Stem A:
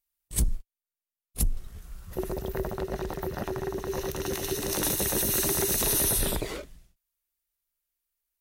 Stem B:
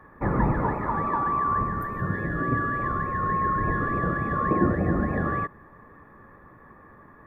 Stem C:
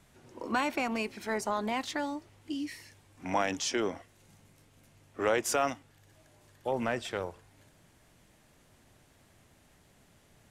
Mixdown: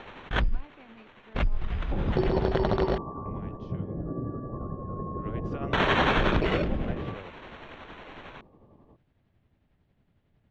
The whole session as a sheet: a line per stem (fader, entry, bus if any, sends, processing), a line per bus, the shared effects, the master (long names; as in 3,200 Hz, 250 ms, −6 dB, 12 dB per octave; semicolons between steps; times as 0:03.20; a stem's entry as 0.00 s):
+0.5 dB, 0.00 s, muted 0:02.98–0:05.73, no send, decimation without filtering 9×; envelope flattener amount 70%
−2.0 dB, 1.70 s, no send, inverse Chebyshev low-pass filter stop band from 2,100 Hz, stop band 50 dB; brickwall limiter −19.5 dBFS, peak gain reduction 8.5 dB
0:05.04 −23 dB → 0:05.67 −12 dB, 0.00 s, no send, low-shelf EQ 330 Hz +12 dB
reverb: not used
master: low-pass filter 3,700 Hz 24 dB per octave; amplitude tremolo 11 Hz, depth 40%